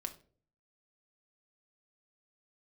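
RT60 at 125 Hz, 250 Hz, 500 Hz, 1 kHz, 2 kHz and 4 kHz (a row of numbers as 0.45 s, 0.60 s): 0.75 s, 0.60 s, 0.55 s, 0.35 s, 0.35 s, 0.30 s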